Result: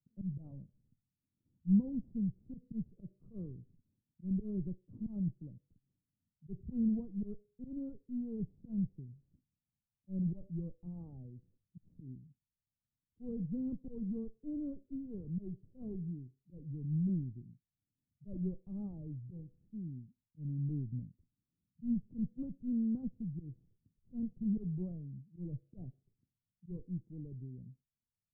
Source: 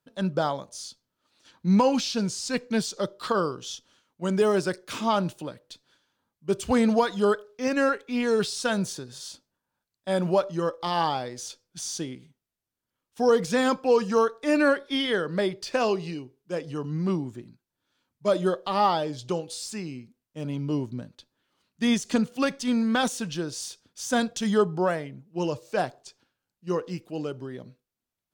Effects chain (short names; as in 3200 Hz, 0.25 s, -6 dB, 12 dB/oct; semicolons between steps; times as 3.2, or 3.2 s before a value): auto swell 0.101 s; added harmonics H 8 -22 dB, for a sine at -10 dBFS; ladder low-pass 220 Hz, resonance 20%; gain +2 dB